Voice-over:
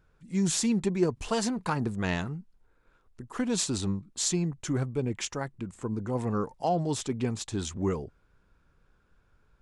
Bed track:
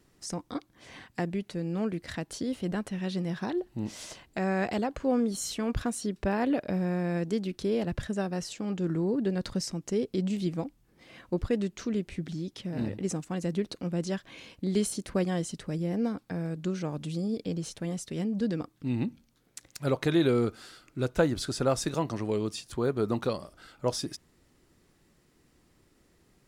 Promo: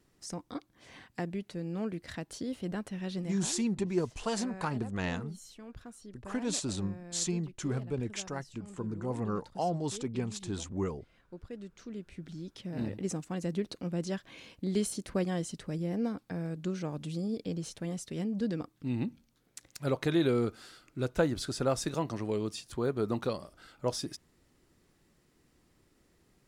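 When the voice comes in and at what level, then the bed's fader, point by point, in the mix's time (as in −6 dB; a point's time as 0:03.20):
2.95 s, −4.5 dB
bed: 0:03.20 −4.5 dB
0:03.71 −17.5 dB
0:11.36 −17.5 dB
0:12.81 −3 dB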